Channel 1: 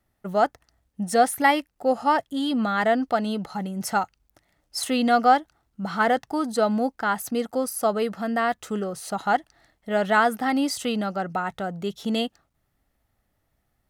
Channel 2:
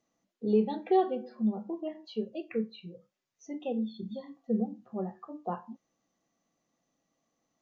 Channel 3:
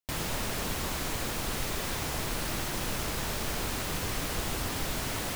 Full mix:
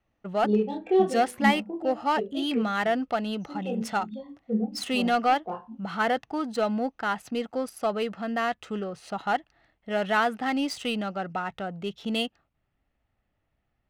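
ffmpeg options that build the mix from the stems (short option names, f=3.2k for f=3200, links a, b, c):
-filter_complex "[0:a]acontrast=84,volume=-11dB[a];[1:a]flanger=delay=19:depth=6.4:speed=0.65,bandreject=f=2k:w=12,adynamicequalizer=threshold=0.00891:dfrequency=340:dqfactor=1:tfrequency=340:tqfactor=1:attack=5:release=100:ratio=0.375:range=2:mode=boostabove:tftype=bell,volume=2.5dB[b];[a][b]amix=inputs=2:normalize=0,equalizer=f=2.7k:t=o:w=0.6:g=7.5,adynamicsmooth=sensitivity=8:basefreq=3.6k"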